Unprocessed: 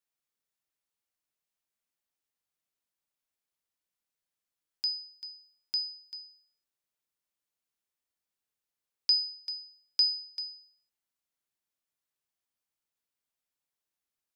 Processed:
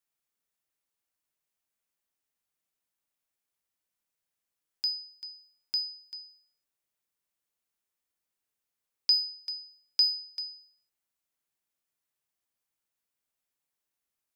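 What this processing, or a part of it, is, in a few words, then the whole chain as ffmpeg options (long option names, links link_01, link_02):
exciter from parts: -filter_complex "[0:a]asplit=2[link_01][link_02];[link_02]highpass=3700,asoftclip=type=tanh:threshold=-32.5dB,highpass=frequency=2200:width=0.5412,highpass=frequency=2200:width=1.3066,volume=-13.5dB[link_03];[link_01][link_03]amix=inputs=2:normalize=0,volume=1.5dB"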